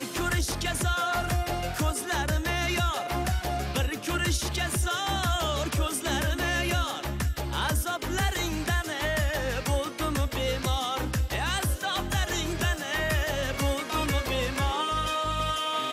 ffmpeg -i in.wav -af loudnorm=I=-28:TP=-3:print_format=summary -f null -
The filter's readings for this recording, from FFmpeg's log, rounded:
Input Integrated:    -28.0 LUFS
Input True Peak:     -16.2 dBTP
Input LRA:             0.6 LU
Input Threshold:     -38.0 LUFS